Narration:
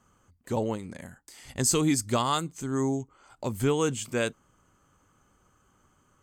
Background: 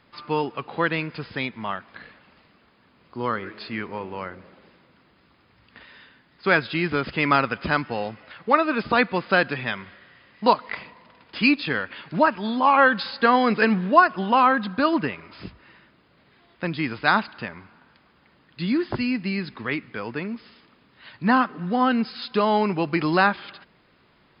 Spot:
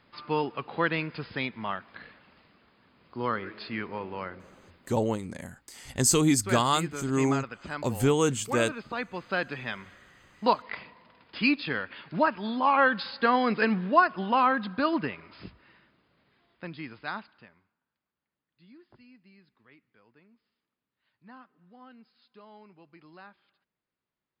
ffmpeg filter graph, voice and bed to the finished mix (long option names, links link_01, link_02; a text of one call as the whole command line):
ffmpeg -i stem1.wav -i stem2.wav -filter_complex "[0:a]adelay=4400,volume=2dB[link_01];[1:a]volume=5dB,afade=type=out:start_time=4.68:duration=0.43:silence=0.298538,afade=type=in:start_time=9.02:duration=0.92:silence=0.375837,afade=type=out:start_time=15.21:duration=2.55:silence=0.0530884[link_02];[link_01][link_02]amix=inputs=2:normalize=0" out.wav